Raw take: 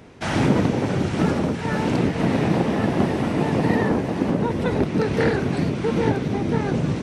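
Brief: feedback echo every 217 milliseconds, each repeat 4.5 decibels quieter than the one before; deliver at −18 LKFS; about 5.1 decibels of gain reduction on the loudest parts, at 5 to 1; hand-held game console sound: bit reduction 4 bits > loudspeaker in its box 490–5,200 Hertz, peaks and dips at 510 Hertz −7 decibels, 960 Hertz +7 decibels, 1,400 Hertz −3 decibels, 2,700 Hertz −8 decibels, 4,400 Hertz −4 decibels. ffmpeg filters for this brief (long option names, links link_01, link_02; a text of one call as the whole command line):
ffmpeg -i in.wav -af "acompressor=threshold=-20dB:ratio=5,aecho=1:1:217|434|651|868|1085|1302|1519|1736|1953:0.596|0.357|0.214|0.129|0.0772|0.0463|0.0278|0.0167|0.01,acrusher=bits=3:mix=0:aa=0.000001,highpass=490,equalizer=frequency=510:width_type=q:width=4:gain=-7,equalizer=frequency=960:width_type=q:width=4:gain=7,equalizer=frequency=1400:width_type=q:width=4:gain=-3,equalizer=frequency=2700:width_type=q:width=4:gain=-8,equalizer=frequency=4400:width_type=q:width=4:gain=-4,lowpass=frequency=5200:width=0.5412,lowpass=frequency=5200:width=1.3066,volume=8.5dB" out.wav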